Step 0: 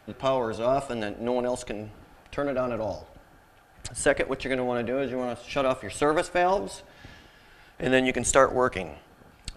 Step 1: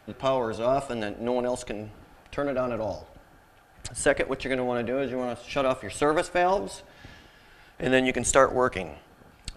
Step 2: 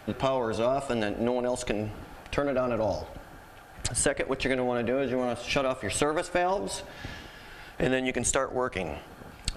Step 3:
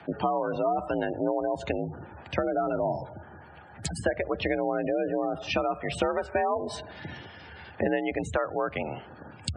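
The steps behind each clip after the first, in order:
no audible change
compression 16:1, threshold -30 dBFS, peak gain reduction 18.5 dB; trim +7.5 dB
frequency shift +53 Hz; spectral gate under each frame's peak -20 dB strong; low-pass that closes with the level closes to 2.2 kHz, closed at -23.5 dBFS

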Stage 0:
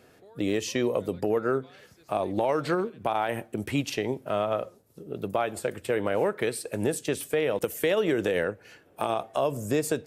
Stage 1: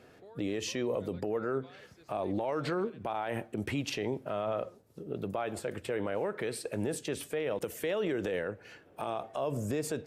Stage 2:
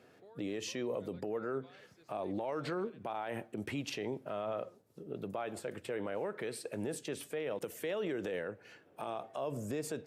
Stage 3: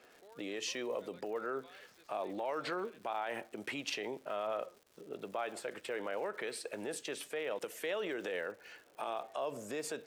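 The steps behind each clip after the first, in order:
treble shelf 7.6 kHz -11 dB; peak limiter -24 dBFS, peak gain reduction 10.5 dB
high-pass 110 Hz; trim -4.5 dB
frequency weighting A; crackle 240 per s -53 dBFS; trim +2.5 dB

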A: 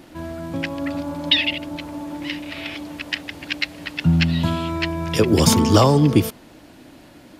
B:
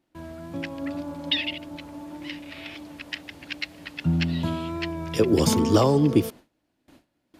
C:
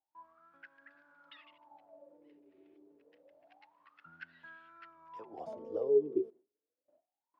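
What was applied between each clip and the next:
wow and flutter 24 cents; gate with hold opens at -34 dBFS; dynamic bell 380 Hz, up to +6 dB, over -29 dBFS, Q 0.92; trim -8 dB
wah-wah 0.28 Hz 380–1600 Hz, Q 21

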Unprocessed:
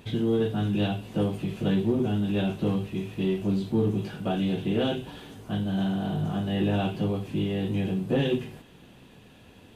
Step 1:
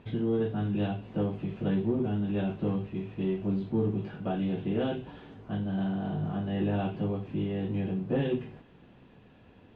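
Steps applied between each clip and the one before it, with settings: low-pass 2.2 kHz 12 dB/octave; trim -3.5 dB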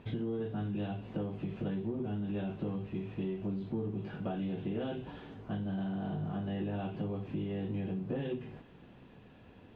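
compression, threshold -33 dBFS, peak gain reduction 9.5 dB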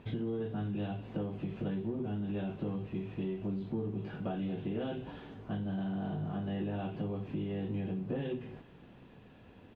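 delay 196 ms -21.5 dB

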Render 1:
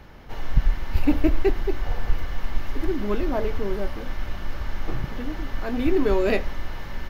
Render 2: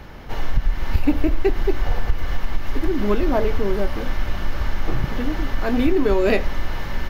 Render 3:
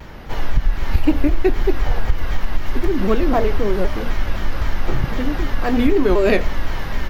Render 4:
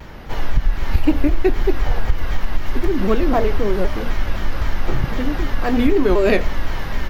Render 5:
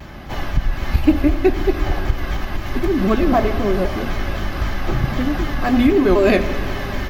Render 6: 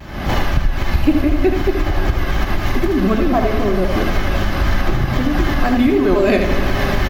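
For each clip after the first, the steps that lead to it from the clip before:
compression, threshold -19 dBFS, peak gain reduction 9.5 dB; trim +7 dB
vibrato with a chosen wave saw down 3.9 Hz, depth 160 cents; trim +2.5 dB
no audible change
comb of notches 470 Hz; reverberation RT60 2.7 s, pre-delay 48 ms, DRR 11 dB; trim +3 dB
recorder AGC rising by 57 dB/s; delay 78 ms -6 dB; trim -1 dB

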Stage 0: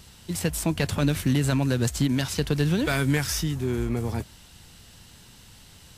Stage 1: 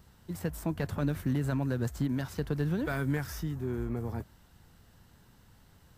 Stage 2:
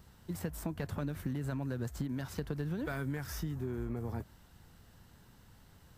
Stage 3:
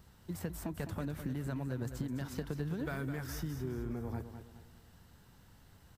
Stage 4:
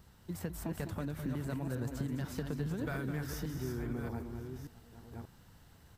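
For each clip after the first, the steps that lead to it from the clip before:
high-order bell 5 kHz -10.5 dB 2.6 oct; trim -7 dB
compression, threshold -33 dBFS, peak gain reduction 8 dB
feedback delay 208 ms, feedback 38%, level -9.5 dB; trim -1.5 dB
chunks repeated in reverse 584 ms, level -6 dB

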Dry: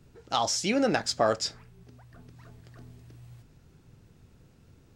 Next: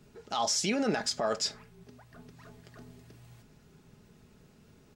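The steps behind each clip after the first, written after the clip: bass shelf 87 Hz -10 dB; peak limiter -22.5 dBFS, peak gain reduction 11 dB; comb 4.8 ms, depth 43%; trim +1.5 dB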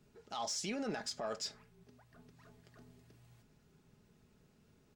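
saturation -19 dBFS, distortion -24 dB; trim -9 dB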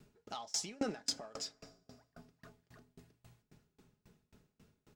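FDN reverb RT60 3.1 s, high-frequency decay 0.7×, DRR 16.5 dB; sawtooth tremolo in dB decaying 3.7 Hz, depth 30 dB; trim +8 dB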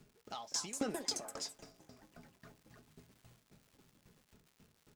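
crackle 240 per s -54 dBFS; ever faster or slower copies 301 ms, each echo +4 st, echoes 2, each echo -6 dB; trim -1 dB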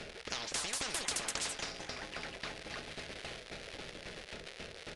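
graphic EQ 125/250/500/1000/2000/4000/8000 Hz -11/-11/+11/-9/+4/+3/-12 dB; resampled via 22.05 kHz; spectrum-flattening compressor 10:1; trim +6 dB

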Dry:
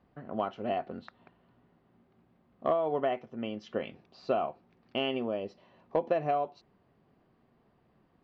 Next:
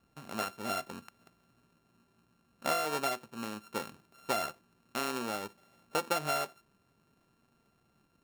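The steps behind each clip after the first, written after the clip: sorted samples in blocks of 32 samples; trim -3.5 dB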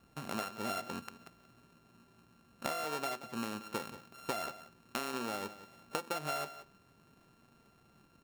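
compression 8:1, threshold -40 dBFS, peak gain reduction 14 dB; delay 180 ms -14.5 dB; trim +5.5 dB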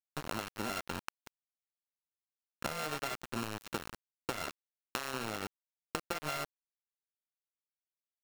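compression 8:1, threshold -39 dBFS, peak gain reduction 8.5 dB; small samples zeroed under -41 dBFS; trim +6.5 dB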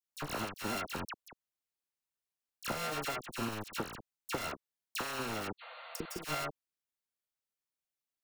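spectral replace 5.60–6.16 s, 480–4600 Hz after; phase dispersion lows, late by 57 ms, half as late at 1.9 kHz; trim +1 dB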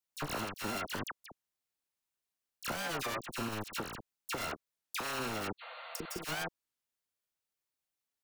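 peak limiter -29 dBFS, peak gain reduction 6.5 dB; warped record 33 1/3 rpm, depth 250 cents; trim +2 dB

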